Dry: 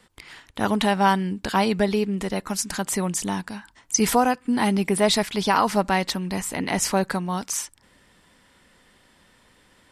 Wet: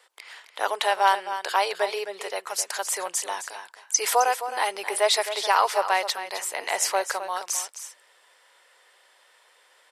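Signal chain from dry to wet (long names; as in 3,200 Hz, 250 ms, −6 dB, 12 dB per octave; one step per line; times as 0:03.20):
inverse Chebyshev high-pass filter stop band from 240 Hz, stop band 40 dB
on a send: single-tap delay 262 ms −11 dB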